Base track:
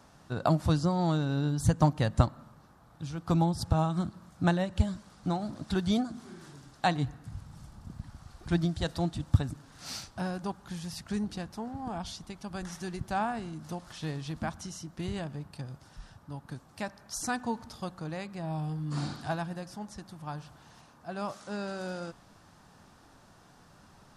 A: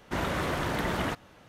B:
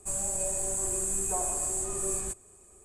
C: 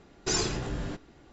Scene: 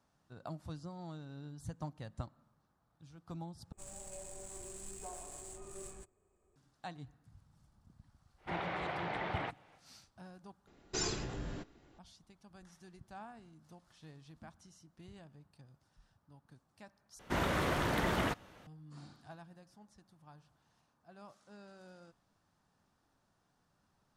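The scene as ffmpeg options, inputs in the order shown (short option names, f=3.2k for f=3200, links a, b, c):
-filter_complex "[1:a]asplit=2[a][b];[0:a]volume=-19dB[c];[2:a]adynamicsmooth=sensitivity=6.5:basefreq=3k[d];[a]highpass=130,equalizer=f=250:t=q:w=4:g=-9,equalizer=f=780:t=q:w=4:g=9,equalizer=f=2.2k:t=q:w=4:g=6,lowpass=f=4.1k:w=0.5412,lowpass=f=4.1k:w=1.3066[e];[c]asplit=4[f][g][h][i];[f]atrim=end=3.724[j];[d]atrim=end=2.84,asetpts=PTS-STARTPTS,volume=-13.5dB[k];[g]atrim=start=6.556:end=10.674[l];[3:a]atrim=end=1.32,asetpts=PTS-STARTPTS,volume=-8dB[m];[h]atrim=start=11.986:end=17.194[n];[b]atrim=end=1.48,asetpts=PTS-STARTPTS,volume=-3dB[o];[i]atrim=start=18.666[p];[e]atrim=end=1.48,asetpts=PTS-STARTPTS,volume=-10dB,afade=t=in:d=0.1,afade=t=out:st=1.38:d=0.1,adelay=8360[q];[j][k]acrossfade=d=0.004:c1=hsin:c2=hsin[r];[r][l]acrossfade=d=0.004:c1=hsin:c2=hsin[s];[s][m]acrossfade=d=0.004:c1=hsin:c2=hsin[t];[t][n]acrossfade=d=0.004:c1=hsin:c2=hsin[u];[u][o]acrossfade=d=0.004:c1=hsin:c2=hsin[v];[v][p]acrossfade=d=0.004:c1=hsin:c2=hsin[w];[w][q]amix=inputs=2:normalize=0"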